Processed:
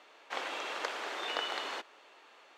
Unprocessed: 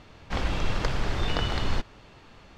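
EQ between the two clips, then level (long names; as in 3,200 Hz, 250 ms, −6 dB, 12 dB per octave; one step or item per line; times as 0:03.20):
Bessel high-pass filter 560 Hz, order 6
parametric band 5,000 Hz −5 dB 0.48 octaves
−2.5 dB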